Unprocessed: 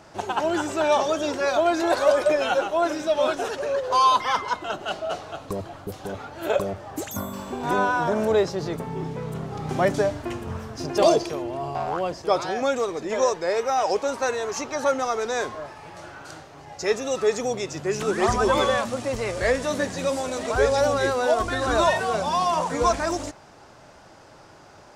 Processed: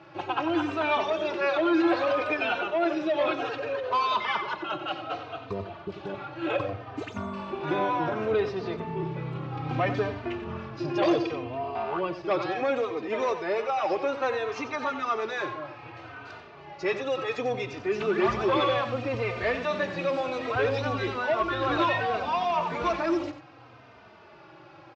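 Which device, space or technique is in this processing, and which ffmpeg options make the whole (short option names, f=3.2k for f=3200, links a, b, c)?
barber-pole flanger into a guitar amplifier: -filter_complex "[0:a]equalizer=f=230:t=o:w=2.1:g=-3,asplit=2[a][b];[b]adelay=3.1,afreqshift=-0.65[c];[a][c]amix=inputs=2:normalize=1,asoftclip=type=tanh:threshold=-20dB,highpass=94,equalizer=f=120:t=q:w=4:g=9,equalizer=f=330:t=q:w=4:g=8,equalizer=f=1.2k:t=q:w=4:g=4,equalizer=f=2.5k:t=q:w=4:g=7,lowpass=f=4.1k:w=0.5412,lowpass=f=4.1k:w=1.3066,aecho=1:1:91:0.282"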